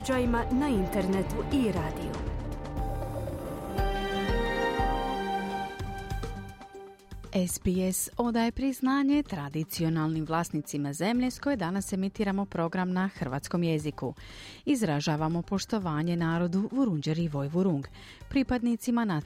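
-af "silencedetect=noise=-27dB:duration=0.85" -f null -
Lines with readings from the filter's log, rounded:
silence_start: 6.25
silence_end: 7.33 | silence_duration: 1.08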